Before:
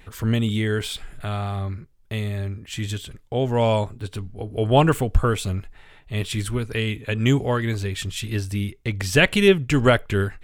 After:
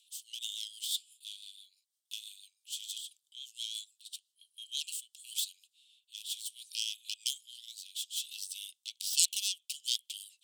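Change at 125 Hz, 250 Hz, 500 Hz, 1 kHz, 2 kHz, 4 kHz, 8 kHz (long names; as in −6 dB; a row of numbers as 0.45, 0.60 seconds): below −40 dB, below −40 dB, below −40 dB, below −40 dB, −26.5 dB, −4.5 dB, +1.5 dB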